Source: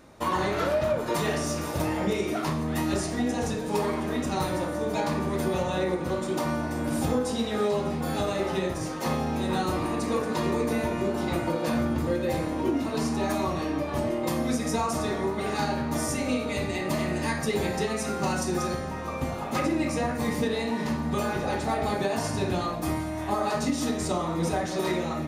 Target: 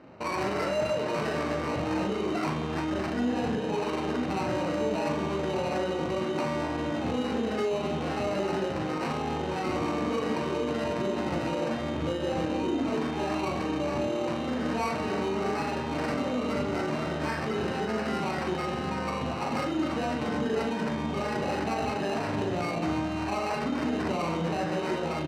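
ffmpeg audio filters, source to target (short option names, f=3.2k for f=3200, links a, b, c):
-filter_complex "[0:a]acrusher=samples=13:mix=1:aa=0.000001,highpass=110,lowpass=6.7k,alimiter=limit=-24dB:level=0:latency=1:release=51,asplit=2[a][b];[b]aecho=0:1:40.82|259.5:0.562|0.282[c];[a][c]amix=inputs=2:normalize=0,adynamicsmooth=sensitivity=5.5:basefreq=2.7k,volume=2dB"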